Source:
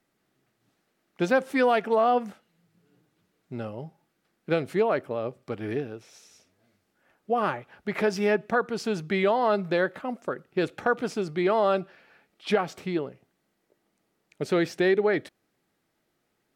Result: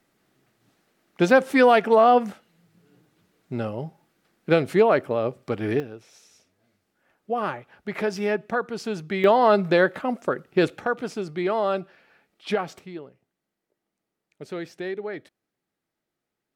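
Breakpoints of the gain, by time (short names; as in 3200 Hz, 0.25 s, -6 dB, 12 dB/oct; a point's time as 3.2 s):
+6 dB
from 5.8 s -1 dB
from 9.24 s +6 dB
from 10.78 s -1 dB
from 12.79 s -9 dB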